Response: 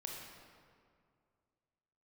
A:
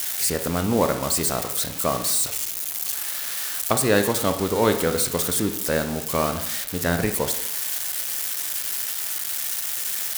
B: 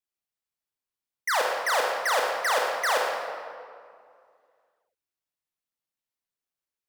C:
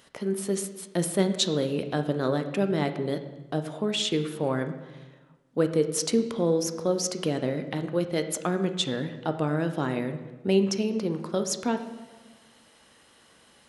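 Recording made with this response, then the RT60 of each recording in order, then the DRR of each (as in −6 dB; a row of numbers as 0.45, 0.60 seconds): B; 0.80, 2.2, 1.3 seconds; 7.5, −1.0, 7.5 decibels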